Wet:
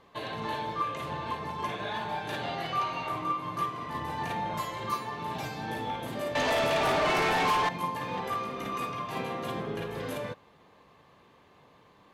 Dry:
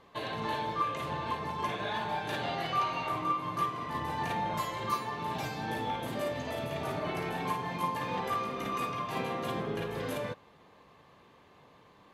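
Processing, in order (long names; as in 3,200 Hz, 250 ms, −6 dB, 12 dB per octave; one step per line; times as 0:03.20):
0:06.35–0:07.69: mid-hump overdrive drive 26 dB, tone 4,500 Hz, clips at −18.5 dBFS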